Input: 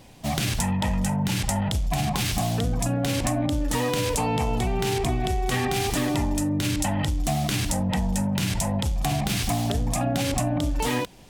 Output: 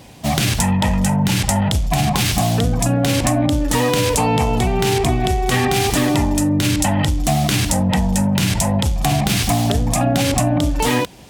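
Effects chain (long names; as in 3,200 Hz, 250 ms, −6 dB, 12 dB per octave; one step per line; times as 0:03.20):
high-pass filter 44 Hz
level +8 dB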